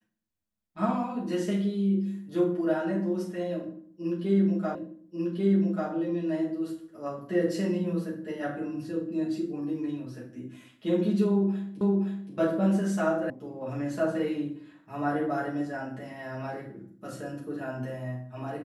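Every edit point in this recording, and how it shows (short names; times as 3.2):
4.75 repeat of the last 1.14 s
11.81 repeat of the last 0.52 s
13.3 sound cut off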